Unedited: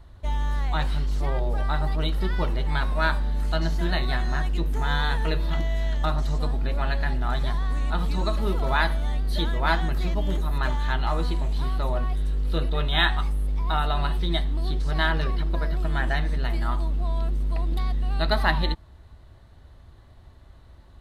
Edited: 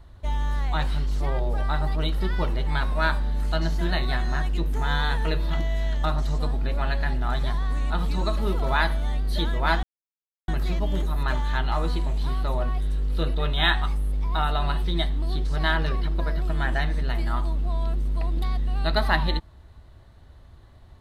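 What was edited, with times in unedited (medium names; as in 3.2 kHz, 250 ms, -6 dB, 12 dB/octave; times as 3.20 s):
9.83 s: insert silence 0.65 s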